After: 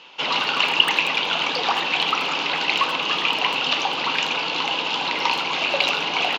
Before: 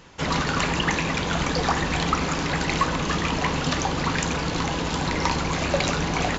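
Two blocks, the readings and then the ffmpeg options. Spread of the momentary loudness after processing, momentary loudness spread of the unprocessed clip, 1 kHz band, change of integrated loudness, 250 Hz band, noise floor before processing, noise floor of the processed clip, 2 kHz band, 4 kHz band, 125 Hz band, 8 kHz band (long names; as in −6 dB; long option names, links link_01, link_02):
5 LU, 2 LU, +2.5 dB, +4.0 dB, −9.5 dB, −27 dBFS, −26 dBFS, +5.0 dB, +9.5 dB, −18.0 dB, can't be measured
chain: -filter_complex "[0:a]asplit=2[link_01][link_02];[link_02]asoftclip=type=tanh:threshold=-17dB,volume=-7dB[link_03];[link_01][link_03]amix=inputs=2:normalize=0,highpass=370,equalizer=frequency=880:width_type=q:width=4:gain=5,equalizer=frequency=1800:width_type=q:width=4:gain=-8,equalizer=frequency=2800:width_type=q:width=4:gain=9,lowpass=frequency=3800:width=0.5412,lowpass=frequency=3800:width=1.3066,asplit=2[link_04][link_05];[link_05]adelay=80,highpass=300,lowpass=3400,asoftclip=type=hard:threshold=-14dB,volume=-13dB[link_06];[link_04][link_06]amix=inputs=2:normalize=0,crystalizer=i=5.5:c=0,volume=-5dB"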